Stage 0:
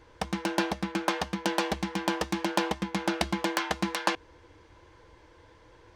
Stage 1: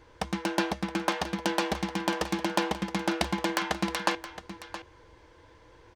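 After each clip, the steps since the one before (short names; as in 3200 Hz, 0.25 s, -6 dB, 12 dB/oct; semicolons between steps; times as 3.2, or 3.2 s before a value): echo 0.67 s -13 dB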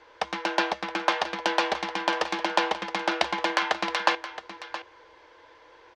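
three-band isolator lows -21 dB, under 400 Hz, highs -24 dB, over 5900 Hz; gain +5.5 dB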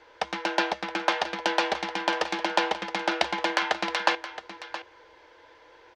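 notch 1100 Hz, Q 9.3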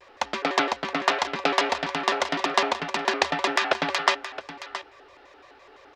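shaped vibrato square 5.9 Hz, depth 250 cents; gain +2.5 dB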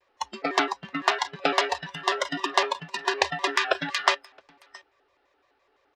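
spectral noise reduction 17 dB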